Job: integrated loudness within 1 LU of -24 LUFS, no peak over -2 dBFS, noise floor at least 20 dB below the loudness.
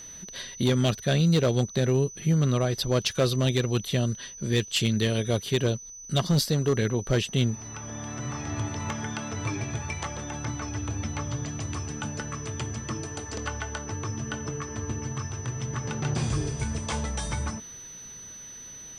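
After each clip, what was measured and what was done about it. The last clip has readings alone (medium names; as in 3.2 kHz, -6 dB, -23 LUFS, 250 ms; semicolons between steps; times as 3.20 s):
clipped samples 0.6%; clipping level -16.5 dBFS; steady tone 6 kHz; tone level -41 dBFS; loudness -28.0 LUFS; peak level -16.5 dBFS; loudness target -24.0 LUFS
-> clip repair -16.5 dBFS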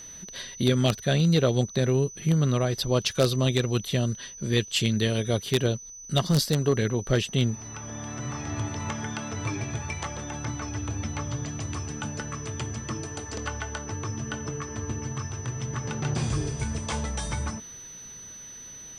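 clipped samples 0.0%; steady tone 6 kHz; tone level -41 dBFS
-> band-stop 6 kHz, Q 30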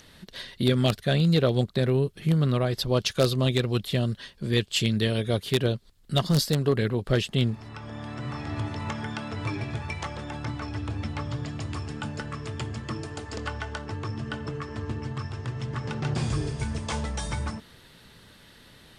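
steady tone not found; loudness -28.0 LUFS; peak level -7.5 dBFS; loudness target -24.0 LUFS
-> trim +4 dB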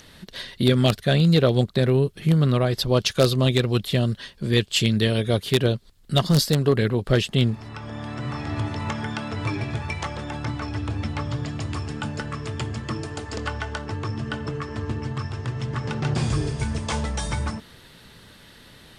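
loudness -24.0 LUFS; peak level -3.5 dBFS; noise floor -49 dBFS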